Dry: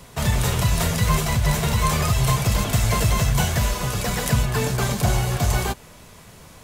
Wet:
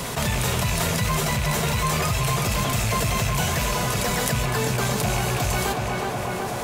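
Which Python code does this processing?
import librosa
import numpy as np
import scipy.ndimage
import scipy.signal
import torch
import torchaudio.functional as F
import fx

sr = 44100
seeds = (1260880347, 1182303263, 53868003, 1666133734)

y = fx.rattle_buzz(x, sr, strikes_db=-18.0, level_db=-20.0)
y = fx.low_shelf(y, sr, hz=91.0, db=-10.0)
y = fx.echo_tape(y, sr, ms=370, feedback_pct=70, wet_db=-7.5, lp_hz=2200.0, drive_db=5.0, wow_cents=26)
y = fx.env_flatten(y, sr, amount_pct=70)
y = F.gain(torch.from_numpy(y), -4.0).numpy()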